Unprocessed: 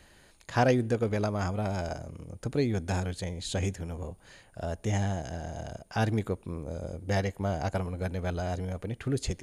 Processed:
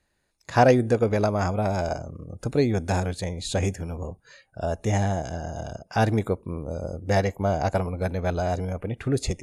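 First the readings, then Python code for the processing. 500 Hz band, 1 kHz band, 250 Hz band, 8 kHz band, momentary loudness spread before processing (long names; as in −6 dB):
+7.5 dB, +8.0 dB, +5.0 dB, +4.5 dB, 12 LU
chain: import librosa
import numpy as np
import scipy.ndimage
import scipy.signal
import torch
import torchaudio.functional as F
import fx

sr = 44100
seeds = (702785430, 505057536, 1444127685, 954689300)

y = fx.notch(x, sr, hz=3100.0, q=9.7)
y = fx.noise_reduce_blind(y, sr, reduce_db=20)
y = fx.dynamic_eq(y, sr, hz=660.0, q=1.0, threshold_db=-39.0, ratio=4.0, max_db=4)
y = y * librosa.db_to_amplitude(4.5)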